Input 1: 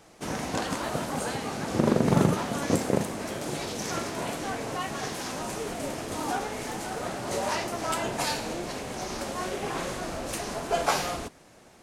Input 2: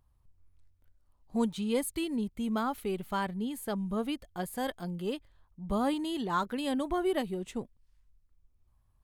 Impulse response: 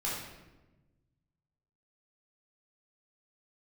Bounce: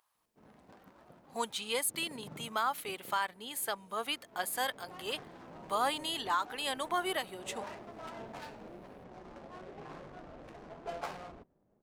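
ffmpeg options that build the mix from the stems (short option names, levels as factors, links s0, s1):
-filter_complex "[0:a]flanger=delay=4.3:depth=2.6:regen=75:speed=0.25:shape=triangular,adynamicsmooth=sensitivity=6.5:basefreq=540,adelay=150,volume=0.299,afade=t=in:st=4.29:d=0.74:silence=0.237137[s0];[1:a]highpass=950,acontrast=71,volume=1.12[s1];[s0][s1]amix=inputs=2:normalize=0,alimiter=limit=0.0944:level=0:latency=1:release=456"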